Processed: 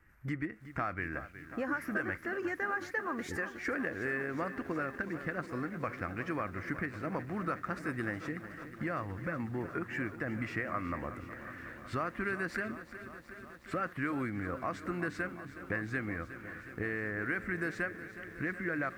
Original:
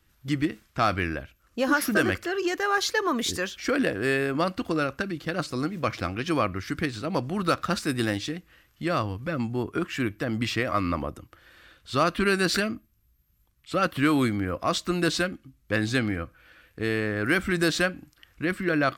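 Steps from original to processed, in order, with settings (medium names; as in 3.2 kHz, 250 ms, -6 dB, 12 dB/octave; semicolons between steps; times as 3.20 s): resonant high shelf 2.6 kHz -10.5 dB, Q 3; compression 3:1, threshold -37 dBFS, peak gain reduction 16.5 dB; bit-crushed delay 367 ms, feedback 80%, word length 10-bit, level -13 dB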